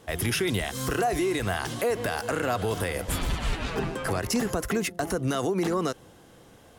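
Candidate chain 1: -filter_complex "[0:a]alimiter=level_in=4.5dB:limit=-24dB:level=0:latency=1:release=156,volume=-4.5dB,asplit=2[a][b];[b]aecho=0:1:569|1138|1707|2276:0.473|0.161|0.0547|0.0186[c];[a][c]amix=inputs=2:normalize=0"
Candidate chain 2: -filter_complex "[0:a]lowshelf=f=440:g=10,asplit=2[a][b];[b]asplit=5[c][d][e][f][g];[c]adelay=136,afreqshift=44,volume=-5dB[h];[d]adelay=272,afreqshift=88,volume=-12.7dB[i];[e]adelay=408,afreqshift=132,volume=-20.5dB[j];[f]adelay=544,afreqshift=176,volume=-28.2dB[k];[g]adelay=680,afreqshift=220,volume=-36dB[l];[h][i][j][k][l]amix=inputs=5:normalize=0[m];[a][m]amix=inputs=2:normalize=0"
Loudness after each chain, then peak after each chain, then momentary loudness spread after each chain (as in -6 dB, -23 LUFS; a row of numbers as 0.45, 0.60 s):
-37.0, -21.0 LUFS; -24.5, -7.0 dBFS; 2, 4 LU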